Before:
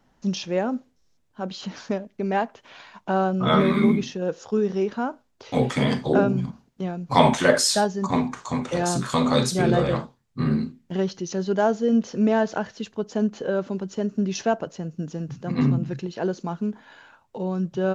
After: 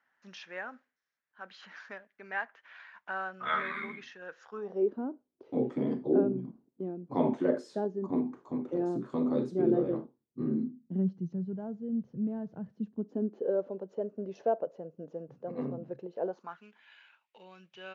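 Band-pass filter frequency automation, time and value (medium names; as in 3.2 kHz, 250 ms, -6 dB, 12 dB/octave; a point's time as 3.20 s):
band-pass filter, Q 3.3
4.46 s 1.7 kHz
4.91 s 330 Hz
10.47 s 330 Hz
11.57 s 130 Hz
12.49 s 130 Hz
13.63 s 530 Hz
16.23 s 530 Hz
16.63 s 2.5 kHz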